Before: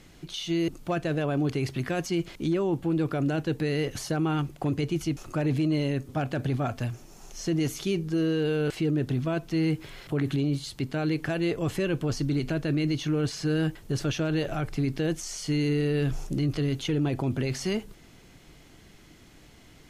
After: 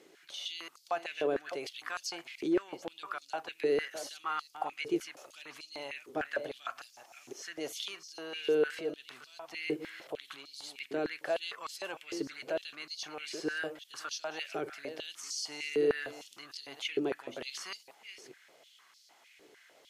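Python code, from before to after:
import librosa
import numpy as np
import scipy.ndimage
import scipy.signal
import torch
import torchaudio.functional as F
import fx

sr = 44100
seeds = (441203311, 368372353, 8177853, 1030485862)

y = fx.reverse_delay(x, sr, ms=407, wet_db=-11)
y = fx.filter_held_highpass(y, sr, hz=6.6, low_hz=400.0, high_hz=4700.0)
y = F.gain(torch.from_numpy(y), -7.5).numpy()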